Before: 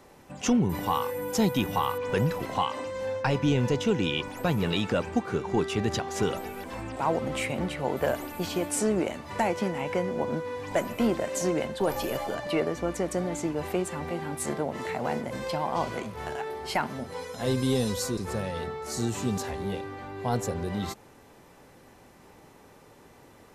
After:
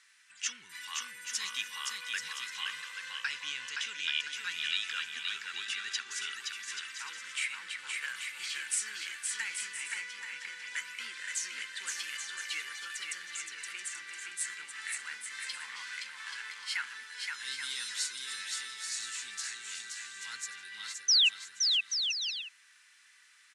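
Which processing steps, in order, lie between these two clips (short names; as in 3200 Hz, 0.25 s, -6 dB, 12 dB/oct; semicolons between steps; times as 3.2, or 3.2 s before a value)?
elliptic band-pass 1600–9600 Hz, stop band 40 dB; painted sound fall, 21.08–21.29, 2500–6300 Hz -23 dBFS; bouncing-ball echo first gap 0.52 s, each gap 0.6×, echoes 5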